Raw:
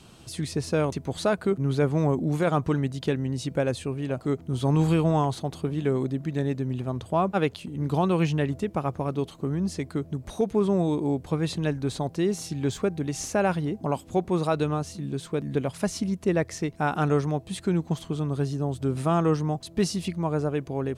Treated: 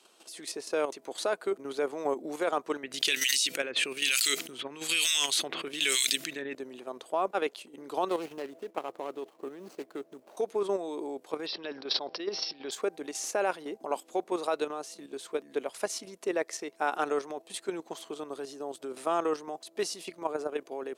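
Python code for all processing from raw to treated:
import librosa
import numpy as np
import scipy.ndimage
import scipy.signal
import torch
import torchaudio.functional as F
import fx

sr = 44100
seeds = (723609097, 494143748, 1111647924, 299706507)

y = fx.chain(x, sr, fx.curve_eq(hz=(110.0, 820.0, 2600.0), db=(0, -13, 12)),
    fx.harmonic_tremolo(hz=1.1, depth_pct=100, crossover_hz=2000.0),
    fx.env_flatten(amount_pct=100), at=(2.83, 6.55))
y = fx.chain(y, sr, fx.median_filter(points=25),
    fx.quant_float(bits=6), at=(8.08, 10.37))
y = fx.chain(y, sr, fx.transient(attack_db=-7, sustain_db=9),
    fx.cheby1_lowpass(hz=5500.0, order=8),
    fx.high_shelf(hz=3800.0, db=8.5), at=(11.46, 12.71))
y = scipy.signal.sosfilt(scipy.signal.butter(4, 360.0, 'highpass', fs=sr, output='sos'), y)
y = fx.high_shelf(y, sr, hz=5700.0, db=3.5)
y = fx.level_steps(y, sr, step_db=9)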